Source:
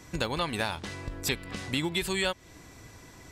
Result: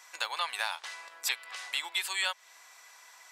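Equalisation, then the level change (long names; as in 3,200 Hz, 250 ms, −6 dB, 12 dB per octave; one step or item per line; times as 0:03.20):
high-pass filter 810 Hz 24 dB per octave
0.0 dB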